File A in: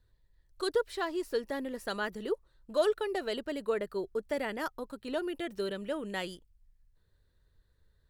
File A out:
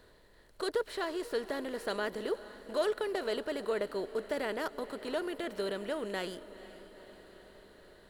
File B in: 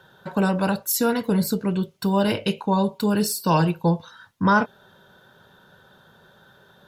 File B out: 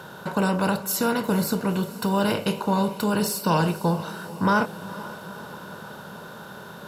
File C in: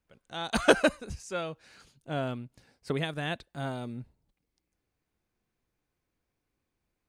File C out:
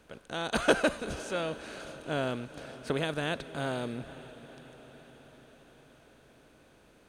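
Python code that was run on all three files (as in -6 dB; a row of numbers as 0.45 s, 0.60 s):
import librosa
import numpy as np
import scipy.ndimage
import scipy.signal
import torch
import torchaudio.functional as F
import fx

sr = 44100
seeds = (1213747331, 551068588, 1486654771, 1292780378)

y = fx.bin_compress(x, sr, power=0.6)
y = fx.echo_diffused(y, sr, ms=482, feedback_pct=65, wet_db=-16.0)
y = y * librosa.db_to_amplitude(-4.5)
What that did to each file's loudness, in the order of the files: -1.0 LU, -2.0 LU, -2.0 LU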